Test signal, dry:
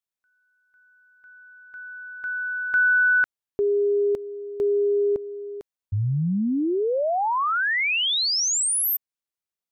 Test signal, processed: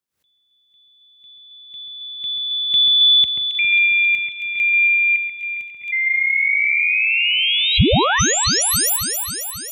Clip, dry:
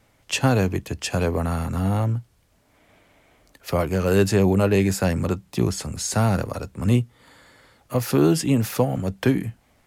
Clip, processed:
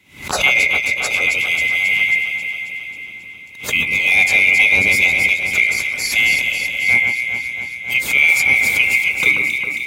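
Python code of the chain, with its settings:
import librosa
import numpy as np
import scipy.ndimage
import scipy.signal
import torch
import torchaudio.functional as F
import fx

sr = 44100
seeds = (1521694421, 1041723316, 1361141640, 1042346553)

y = fx.band_swap(x, sr, width_hz=2000)
y = scipy.signal.sosfilt(scipy.signal.butter(4, 55.0, 'highpass', fs=sr, output='sos'), y)
y = fx.low_shelf(y, sr, hz=300.0, db=9.5)
y = fx.notch(y, sr, hz=670.0, q=12.0)
y = fx.echo_alternate(y, sr, ms=135, hz=2300.0, feedback_pct=80, wet_db=-3.5)
y = fx.pre_swell(y, sr, db_per_s=130.0)
y = F.gain(torch.from_numpy(y), 3.5).numpy()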